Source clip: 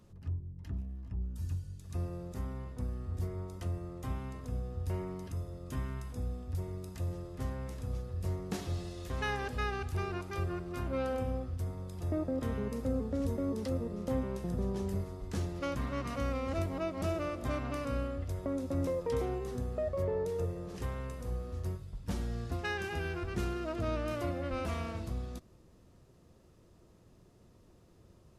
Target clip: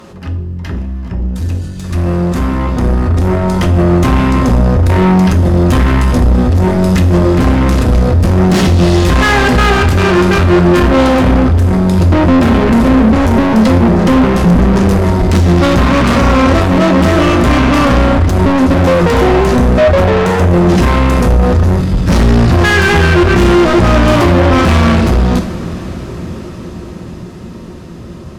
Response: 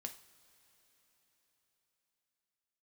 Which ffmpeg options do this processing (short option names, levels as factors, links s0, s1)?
-filter_complex "[0:a]asubboost=boost=5:cutoff=240,asplit=2[s0][s1];[s1]highpass=f=720:p=1,volume=89.1,asoftclip=type=tanh:threshold=0.251[s2];[s0][s2]amix=inputs=2:normalize=0,lowpass=f=2400:p=1,volume=0.501,dynaudnorm=f=270:g=21:m=3.98[s3];[1:a]atrim=start_sample=2205,asetrate=39690,aresample=44100[s4];[s3][s4]afir=irnorm=-1:irlink=0,acontrast=78,volume=0.891"